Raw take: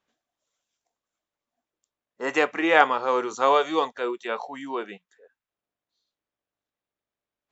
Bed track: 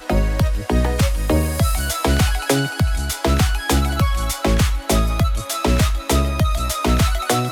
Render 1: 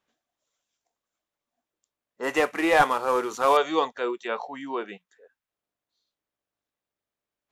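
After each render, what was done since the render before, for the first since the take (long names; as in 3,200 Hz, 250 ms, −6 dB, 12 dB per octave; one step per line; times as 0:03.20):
0:02.23–0:03.57: variable-slope delta modulation 64 kbit/s
0:04.28–0:04.88: high-frequency loss of the air 62 metres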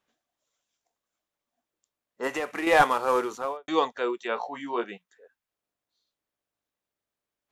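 0:02.27–0:02.67: downward compressor 3 to 1, threshold −28 dBFS
0:03.18–0:03.68: fade out and dull
0:04.35–0:04.84: double-tracking delay 17 ms −5 dB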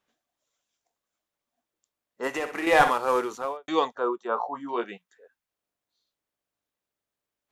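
0:02.28–0:02.91: flutter between parallel walls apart 10.5 metres, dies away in 0.4 s
0:03.95–0:04.69: high shelf with overshoot 1,600 Hz −10 dB, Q 3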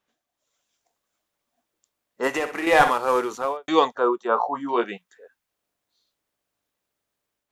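automatic gain control gain up to 6.5 dB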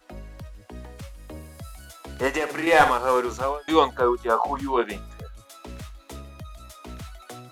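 mix in bed track −22.5 dB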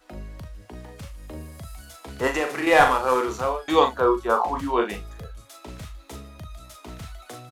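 double-tracking delay 39 ms −7 dB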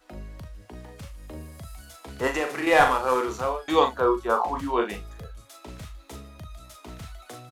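level −2 dB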